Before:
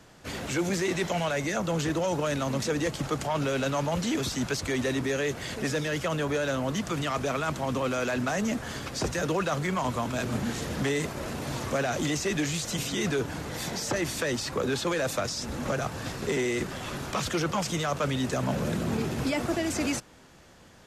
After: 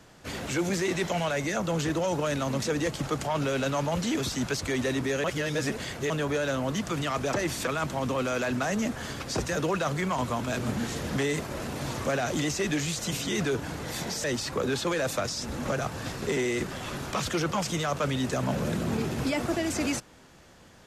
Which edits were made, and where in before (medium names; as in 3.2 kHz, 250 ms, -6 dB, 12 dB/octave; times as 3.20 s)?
5.24–6.10 s: reverse
13.90–14.24 s: move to 7.33 s